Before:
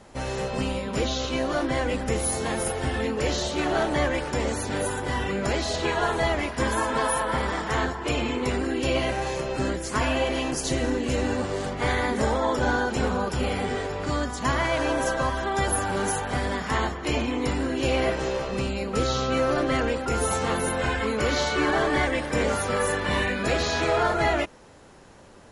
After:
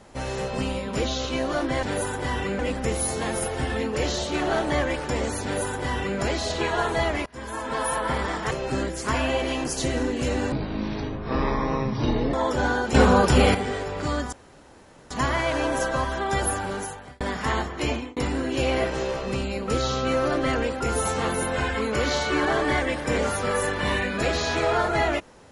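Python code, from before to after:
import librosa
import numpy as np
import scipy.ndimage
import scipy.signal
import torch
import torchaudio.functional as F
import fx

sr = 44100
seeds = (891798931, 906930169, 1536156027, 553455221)

y = fx.edit(x, sr, fx.duplicate(start_s=4.67, length_s=0.76, to_s=1.83),
    fx.fade_in_from(start_s=6.5, length_s=0.73, floor_db=-24.0),
    fx.cut(start_s=7.75, length_s=1.63),
    fx.speed_span(start_s=11.39, length_s=0.98, speed=0.54),
    fx.clip_gain(start_s=12.98, length_s=0.6, db=9.0),
    fx.insert_room_tone(at_s=14.36, length_s=0.78),
    fx.fade_out_span(start_s=15.72, length_s=0.74),
    fx.fade_out_span(start_s=17.15, length_s=0.27), tone=tone)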